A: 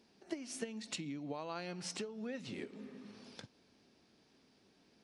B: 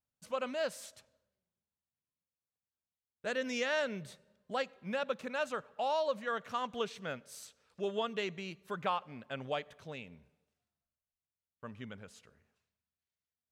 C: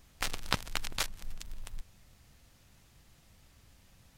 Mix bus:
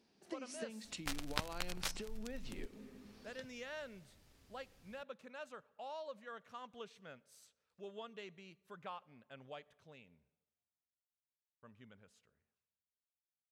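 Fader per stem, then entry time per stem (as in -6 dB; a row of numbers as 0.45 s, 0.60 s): -5.0 dB, -14.0 dB, -7.5 dB; 0.00 s, 0.00 s, 0.85 s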